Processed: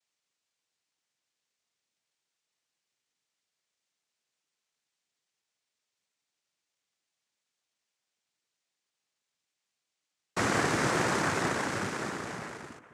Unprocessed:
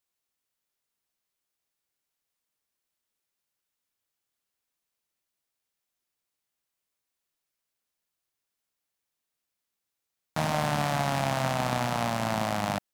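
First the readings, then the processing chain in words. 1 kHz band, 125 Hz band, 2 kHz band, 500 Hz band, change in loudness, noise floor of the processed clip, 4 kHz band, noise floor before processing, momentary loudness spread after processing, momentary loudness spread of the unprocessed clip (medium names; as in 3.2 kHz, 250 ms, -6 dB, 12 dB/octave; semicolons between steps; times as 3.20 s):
-4.0 dB, -6.5 dB, +2.5 dB, -2.5 dB, -1.5 dB, under -85 dBFS, -2.5 dB, -85 dBFS, 13 LU, 3 LU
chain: fade out at the end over 1.84 s; bucket-brigade echo 412 ms, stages 4096, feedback 59%, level -22 dB; noise-vocoded speech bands 3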